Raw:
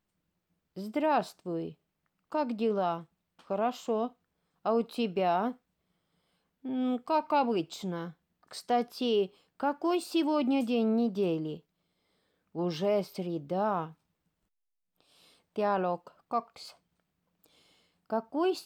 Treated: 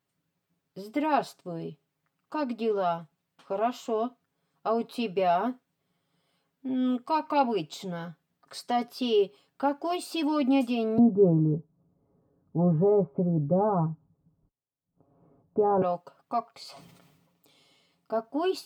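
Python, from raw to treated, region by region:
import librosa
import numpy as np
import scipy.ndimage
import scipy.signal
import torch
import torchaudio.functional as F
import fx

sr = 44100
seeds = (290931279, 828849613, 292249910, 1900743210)

y = fx.chain(x, sr, fx.lowpass(hz=1200.0, slope=24),
    fx.tilt_eq(slope=-4.5), at=(10.98, 15.82))
y = fx.chain(y, sr, fx.high_shelf(hz=8700.0, db=-2.5),
    fx.notch(hz=1600.0, q=5.5),
    fx.sustainer(db_per_s=37.0), at=(16.63, 18.15))
y = scipy.signal.sosfilt(scipy.signal.butter(2, 70.0, 'highpass', fs=sr, output='sos'), y)
y = y + 0.74 * np.pad(y, (int(7.3 * sr / 1000.0), 0))[:len(y)]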